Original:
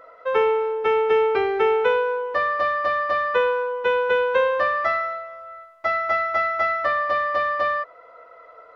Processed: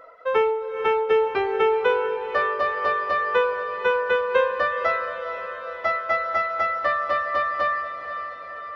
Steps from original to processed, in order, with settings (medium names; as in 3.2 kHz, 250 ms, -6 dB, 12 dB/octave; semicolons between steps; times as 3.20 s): reverb removal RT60 0.66 s; on a send: echo that smears into a reverb 472 ms, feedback 65%, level -10 dB